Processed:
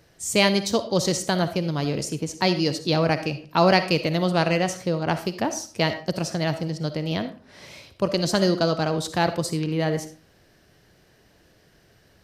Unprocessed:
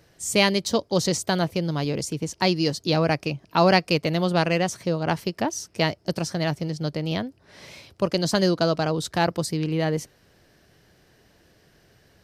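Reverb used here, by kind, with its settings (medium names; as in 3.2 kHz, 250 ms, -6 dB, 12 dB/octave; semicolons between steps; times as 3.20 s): algorithmic reverb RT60 0.41 s, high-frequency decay 0.7×, pre-delay 20 ms, DRR 10 dB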